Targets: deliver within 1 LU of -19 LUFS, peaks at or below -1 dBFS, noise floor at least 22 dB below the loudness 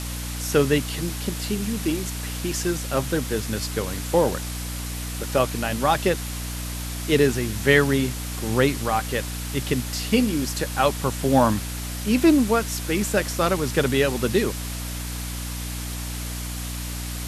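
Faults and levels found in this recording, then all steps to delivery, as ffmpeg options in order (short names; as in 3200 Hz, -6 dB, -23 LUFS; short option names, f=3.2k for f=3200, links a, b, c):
hum 60 Hz; harmonics up to 300 Hz; hum level -29 dBFS; noise floor -31 dBFS; noise floor target -46 dBFS; loudness -24.0 LUFS; peak -2.5 dBFS; loudness target -19.0 LUFS
-> -af "bandreject=f=60:t=h:w=6,bandreject=f=120:t=h:w=6,bandreject=f=180:t=h:w=6,bandreject=f=240:t=h:w=6,bandreject=f=300:t=h:w=6"
-af "afftdn=nr=15:nf=-31"
-af "volume=5dB,alimiter=limit=-1dB:level=0:latency=1"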